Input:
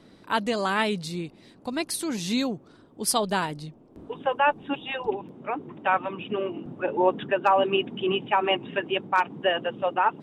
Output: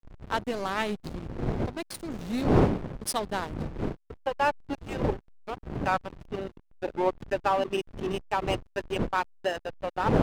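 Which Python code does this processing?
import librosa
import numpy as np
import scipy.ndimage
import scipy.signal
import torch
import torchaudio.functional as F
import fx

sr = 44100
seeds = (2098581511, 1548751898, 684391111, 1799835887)

p1 = fx.dmg_wind(x, sr, seeds[0], corner_hz=460.0, level_db=-28.0)
p2 = fx.rider(p1, sr, range_db=4, speed_s=2.0)
p3 = p1 + (p2 * 10.0 ** (-2.0 / 20.0))
p4 = fx.backlash(p3, sr, play_db=-16.5)
y = p4 * 10.0 ** (-9.0 / 20.0)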